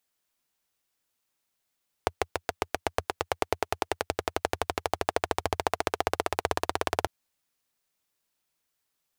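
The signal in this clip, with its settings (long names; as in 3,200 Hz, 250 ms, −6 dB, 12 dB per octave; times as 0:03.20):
pulse-train model of a single-cylinder engine, changing speed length 5.00 s, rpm 800, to 2,100, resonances 86/450/690 Hz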